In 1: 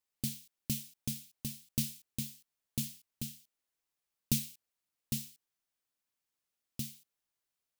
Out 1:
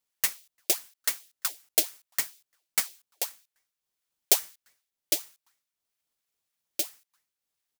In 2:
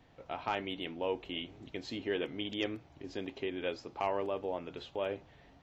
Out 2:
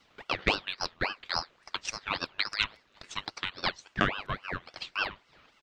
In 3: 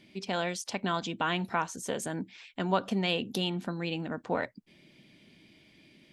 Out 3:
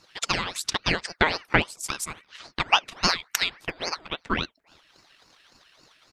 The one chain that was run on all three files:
drawn EQ curve 140 Hz 0 dB, 300 Hz −23 dB, 540 Hz +4 dB, 1,400 Hz +11 dB
slap from a distant wall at 59 metres, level −26 dB
transient designer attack +10 dB, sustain −5 dB
ring modulator whose carrier an LFO sweeps 1,300 Hz, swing 65%, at 3.6 Hz
level −3.5 dB

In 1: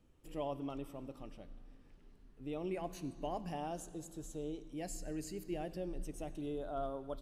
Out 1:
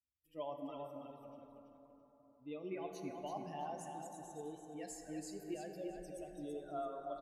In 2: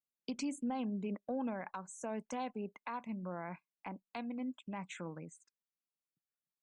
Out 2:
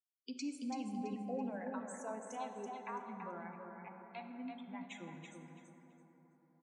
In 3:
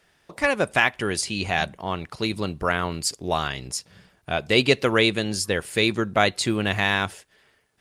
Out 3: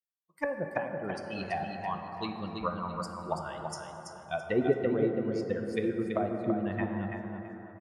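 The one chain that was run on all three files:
spectral dynamics exaggerated over time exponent 2
high-pass filter 240 Hz 6 dB per octave
treble cut that deepens with the level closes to 410 Hz, closed at −25 dBFS
repeating echo 332 ms, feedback 24%, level −6 dB
dense smooth reverb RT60 4.3 s, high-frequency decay 0.3×, DRR 4 dB

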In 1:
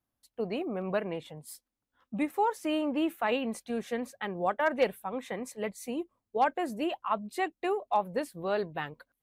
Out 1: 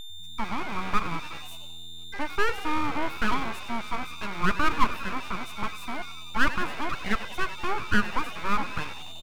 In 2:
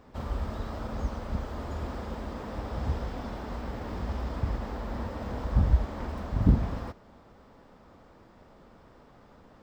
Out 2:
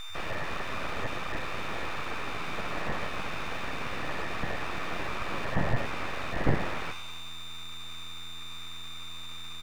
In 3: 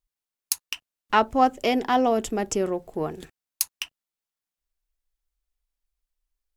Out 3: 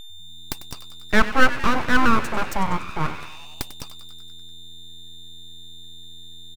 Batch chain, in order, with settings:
parametric band 620 Hz +14.5 dB 1.5 octaves
steady tone 1,800 Hz −31 dBFS
on a send: echo with shifted repeats 96 ms, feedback 63%, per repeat +85 Hz, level −14.5 dB
on the sum: full-wave rectification
level −4 dB

